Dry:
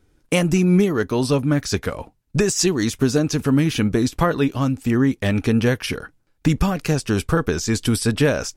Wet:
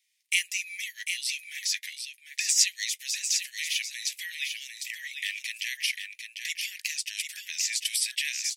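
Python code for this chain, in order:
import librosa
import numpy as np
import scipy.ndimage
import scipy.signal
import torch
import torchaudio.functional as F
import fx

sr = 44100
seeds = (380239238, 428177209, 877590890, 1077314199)

y = scipy.signal.sosfilt(scipy.signal.butter(16, 1900.0, 'highpass', fs=sr, output='sos'), x)
y = y + 10.0 ** (-6.5 / 20.0) * np.pad(y, (int(748 * sr / 1000.0), 0))[:len(y)]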